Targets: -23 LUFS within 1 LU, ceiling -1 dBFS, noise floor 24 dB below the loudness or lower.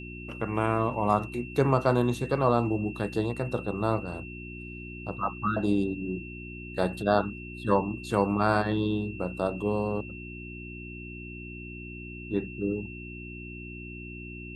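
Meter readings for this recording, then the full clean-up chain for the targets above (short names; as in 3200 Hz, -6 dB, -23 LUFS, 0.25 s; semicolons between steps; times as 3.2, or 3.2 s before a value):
hum 60 Hz; harmonics up to 360 Hz; hum level -39 dBFS; steady tone 2700 Hz; tone level -43 dBFS; loudness -28.5 LUFS; peak -8.0 dBFS; loudness target -23.0 LUFS
-> de-hum 60 Hz, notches 6; notch 2700 Hz, Q 30; gain +5.5 dB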